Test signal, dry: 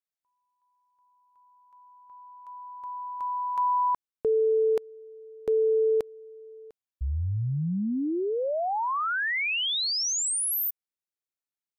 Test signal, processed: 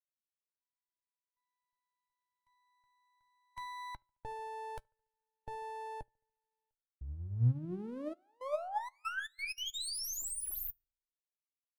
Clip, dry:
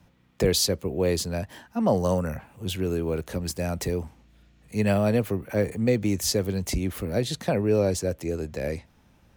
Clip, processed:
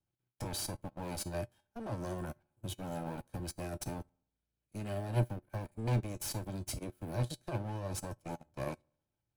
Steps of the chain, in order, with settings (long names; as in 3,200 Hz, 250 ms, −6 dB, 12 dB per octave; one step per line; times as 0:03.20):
lower of the sound and its delayed copy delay 1.3 ms
brickwall limiter −21 dBFS
thirty-one-band graphic EQ 100 Hz +5 dB, 315 Hz +7 dB, 2,000 Hz −4 dB, 10,000 Hz +8 dB
output level in coarse steps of 16 dB
tuned comb filter 120 Hz, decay 0.26 s, harmonics odd, mix 70%
on a send: delay with a low-pass on its return 72 ms, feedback 54%, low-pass 1,700 Hz, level −18 dB
on the sum: expander for the loud parts 2.5 to 1, over −52 dBFS
level +10 dB